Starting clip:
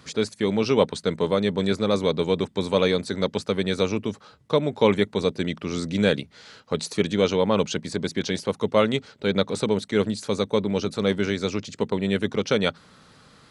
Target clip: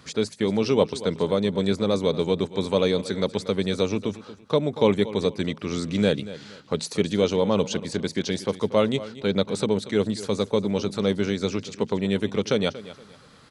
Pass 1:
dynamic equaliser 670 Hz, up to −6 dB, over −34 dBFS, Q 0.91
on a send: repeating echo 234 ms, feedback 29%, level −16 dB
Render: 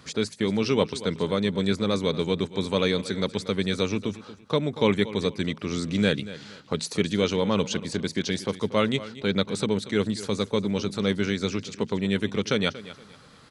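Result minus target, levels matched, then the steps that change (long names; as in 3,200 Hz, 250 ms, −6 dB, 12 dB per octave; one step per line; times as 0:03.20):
2,000 Hz band +4.5 dB
change: dynamic equaliser 1,700 Hz, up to −6 dB, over −34 dBFS, Q 0.91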